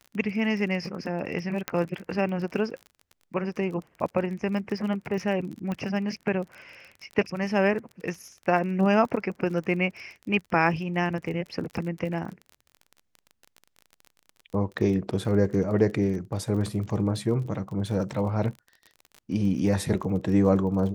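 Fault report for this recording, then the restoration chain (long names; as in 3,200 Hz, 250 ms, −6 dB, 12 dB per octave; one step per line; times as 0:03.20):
surface crackle 32 per second −35 dBFS
0:01.68: click −11 dBFS
0:05.72: click −20 dBFS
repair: click removal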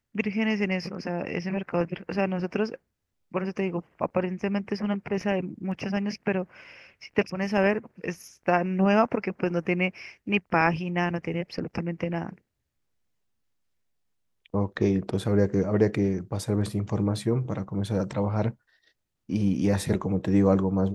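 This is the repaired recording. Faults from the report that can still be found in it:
0:05.72: click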